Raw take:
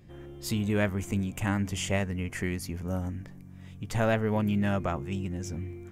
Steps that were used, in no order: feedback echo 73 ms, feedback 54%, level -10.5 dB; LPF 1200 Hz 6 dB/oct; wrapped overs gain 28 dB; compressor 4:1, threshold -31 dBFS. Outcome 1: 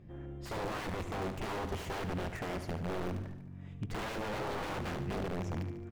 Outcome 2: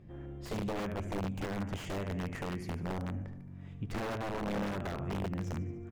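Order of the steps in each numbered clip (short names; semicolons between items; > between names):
wrapped overs > feedback echo > compressor > LPF; feedback echo > compressor > wrapped overs > LPF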